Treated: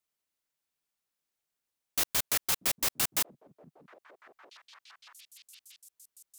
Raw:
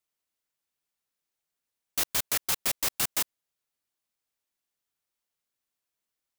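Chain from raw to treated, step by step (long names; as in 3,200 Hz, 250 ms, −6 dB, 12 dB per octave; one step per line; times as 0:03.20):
echo through a band-pass that steps 634 ms, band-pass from 190 Hz, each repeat 1.4 octaves, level −10 dB
level −1 dB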